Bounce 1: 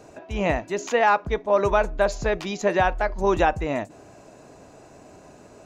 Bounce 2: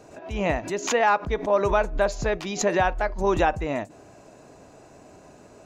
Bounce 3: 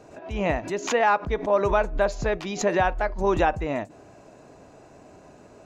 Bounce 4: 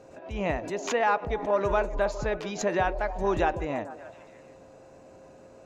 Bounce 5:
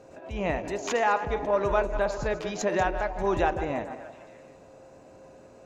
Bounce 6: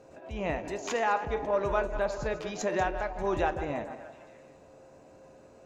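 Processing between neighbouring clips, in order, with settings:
swell ahead of each attack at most 130 dB/s; trim -1.5 dB
treble shelf 5.9 kHz -7 dB
whistle 530 Hz -49 dBFS; repeats whose band climbs or falls 147 ms, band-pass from 410 Hz, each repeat 0.7 oct, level -9 dB; trim -4 dB
backward echo that repeats 104 ms, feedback 46%, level -11 dB
feedback comb 74 Hz, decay 0.22 s, mix 50%

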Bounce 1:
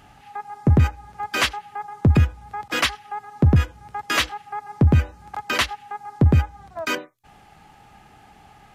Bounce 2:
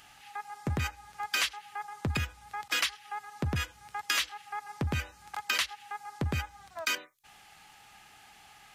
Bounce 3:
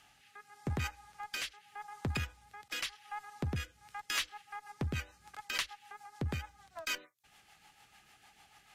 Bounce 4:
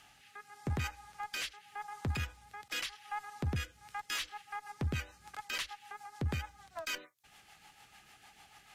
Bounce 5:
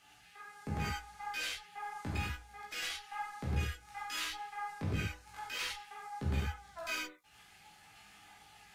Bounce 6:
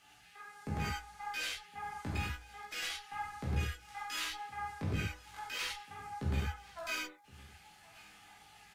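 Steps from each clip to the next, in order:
tilt shelf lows -10 dB, about 1.1 kHz; compression 6:1, threshold -21 dBFS, peak gain reduction 11.5 dB; trim -5.5 dB
rotary cabinet horn 0.85 Hz, later 6.7 Hz, at 3.54 s; Chebyshev shaper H 8 -30 dB, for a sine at -13.5 dBFS; trim -4 dB
peak limiter -29.5 dBFS, peak gain reduction 10.5 dB; trim +3 dB
chorus voices 2, 0.31 Hz, delay 17 ms, depth 2.4 ms; gated-style reverb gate 130 ms flat, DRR -4.5 dB; trim -2.5 dB
delay 1066 ms -23 dB

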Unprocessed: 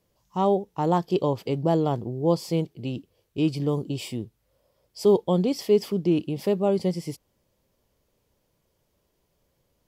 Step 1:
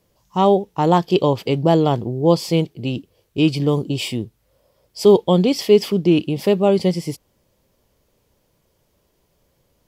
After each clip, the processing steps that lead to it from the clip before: dynamic bell 2.9 kHz, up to +6 dB, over -45 dBFS, Q 0.97; trim +7 dB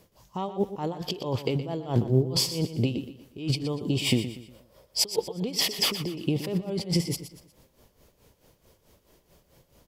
compressor with a negative ratio -25 dBFS, ratio -1; tremolo 4.6 Hz, depth 85%; feedback delay 120 ms, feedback 37%, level -12 dB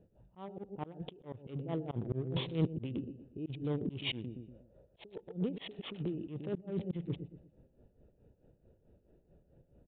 local Wiener filter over 41 samples; slow attack 283 ms; resampled via 8 kHz; trim -2 dB

